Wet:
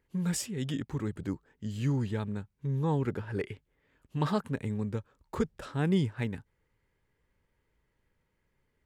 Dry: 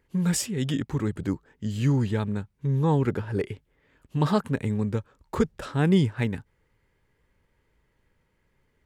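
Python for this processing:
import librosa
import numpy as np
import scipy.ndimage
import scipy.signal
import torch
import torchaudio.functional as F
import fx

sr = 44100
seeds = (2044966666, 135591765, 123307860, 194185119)

y = fx.dynamic_eq(x, sr, hz=1900.0, q=0.74, threshold_db=-47.0, ratio=4.0, max_db=5, at=(3.2, 4.3))
y = y * librosa.db_to_amplitude(-6.5)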